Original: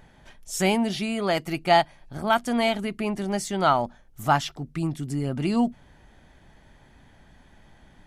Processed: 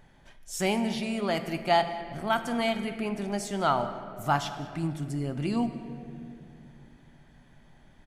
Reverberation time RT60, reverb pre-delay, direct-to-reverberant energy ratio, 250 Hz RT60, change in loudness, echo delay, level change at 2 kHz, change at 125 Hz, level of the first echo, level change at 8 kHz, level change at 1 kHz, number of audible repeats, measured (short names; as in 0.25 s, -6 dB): 2.5 s, 3 ms, 8.0 dB, 3.7 s, -4.5 dB, 0.195 s, -4.5 dB, -3.5 dB, -21.5 dB, -4.5 dB, -4.5 dB, 1